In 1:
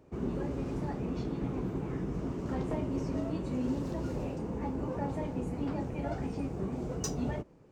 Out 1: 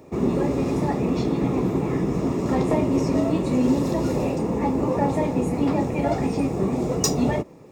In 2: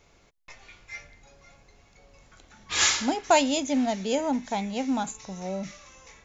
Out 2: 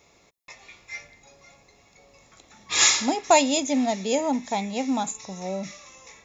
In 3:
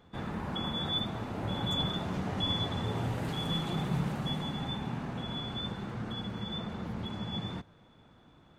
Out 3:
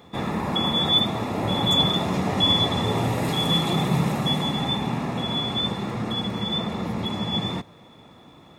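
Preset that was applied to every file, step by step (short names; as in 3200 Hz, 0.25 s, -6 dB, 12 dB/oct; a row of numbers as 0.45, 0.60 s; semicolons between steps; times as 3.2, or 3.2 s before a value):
high shelf 5600 Hz +6 dB; notch comb 1500 Hz; match loudness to -23 LUFS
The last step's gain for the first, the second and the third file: +14.0, +2.5, +12.0 dB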